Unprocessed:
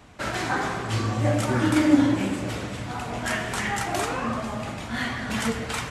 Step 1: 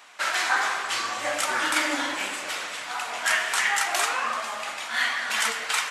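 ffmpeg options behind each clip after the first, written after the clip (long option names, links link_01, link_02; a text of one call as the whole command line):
ffmpeg -i in.wav -af "highpass=1100,volume=6.5dB" out.wav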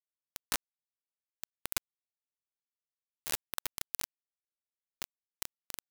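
ffmpeg -i in.wav -af "aeval=exprs='0.355*(cos(1*acos(clip(val(0)/0.355,-1,1)))-cos(1*PI/2))+0.158*(cos(3*acos(clip(val(0)/0.355,-1,1)))-cos(3*PI/2))+0.00794*(cos(4*acos(clip(val(0)/0.355,-1,1)))-cos(4*PI/2))+0.00447*(cos(8*acos(clip(val(0)/0.355,-1,1)))-cos(8*PI/2))':channel_layout=same,aeval=exprs='0.0891*(abs(mod(val(0)/0.0891+3,4)-2)-1)':channel_layout=same,acrusher=bits=3:mix=0:aa=0.000001,volume=5dB" out.wav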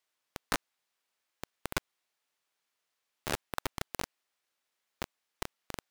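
ffmpeg -i in.wav -filter_complex "[0:a]asplit=2[link_01][link_02];[link_02]highpass=frequency=720:poles=1,volume=23dB,asoftclip=type=tanh:threshold=-11.5dB[link_03];[link_01][link_03]amix=inputs=2:normalize=0,lowpass=frequency=3400:poles=1,volume=-6dB,volume=1.5dB" out.wav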